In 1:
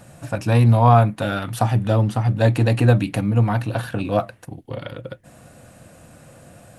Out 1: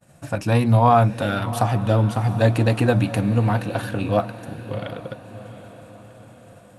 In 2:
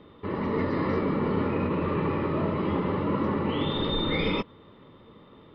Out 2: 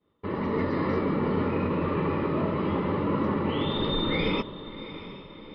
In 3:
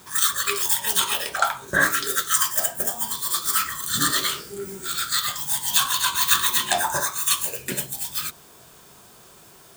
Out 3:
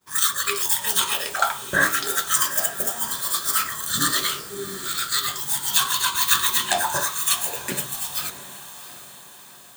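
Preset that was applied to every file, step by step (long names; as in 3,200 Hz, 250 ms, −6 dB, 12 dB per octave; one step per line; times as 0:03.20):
downward expander −38 dBFS
mains-hum notches 60/120 Hz
feedback delay with all-pass diffusion 716 ms, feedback 53%, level −14 dB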